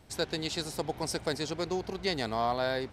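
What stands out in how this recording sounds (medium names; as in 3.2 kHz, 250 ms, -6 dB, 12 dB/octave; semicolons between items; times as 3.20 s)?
noise floor -50 dBFS; spectral tilt -4.0 dB/octave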